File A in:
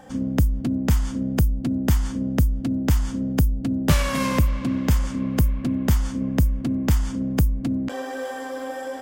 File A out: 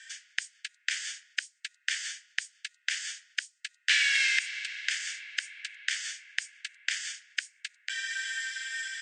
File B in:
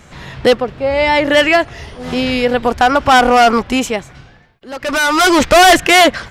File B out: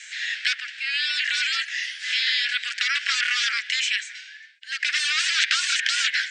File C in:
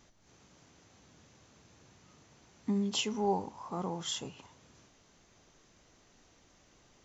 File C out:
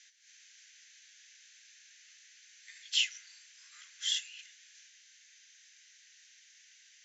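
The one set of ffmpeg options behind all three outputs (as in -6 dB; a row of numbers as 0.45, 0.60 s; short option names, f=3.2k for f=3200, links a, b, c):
-filter_complex "[0:a]asuperpass=centerf=3900:order=20:qfactor=0.55,afftfilt=real='re*lt(hypot(re,im),0.224)':imag='im*lt(hypot(re,im),0.224)':win_size=1024:overlap=0.75,acrossover=split=4200[a][b];[b]acompressor=threshold=-44dB:ratio=4:attack=1:release=60[c];[a][c]amix=inputs=2:normalize=0,volume=8dB"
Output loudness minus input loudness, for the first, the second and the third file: -8.0, -10.5, +2.0 LU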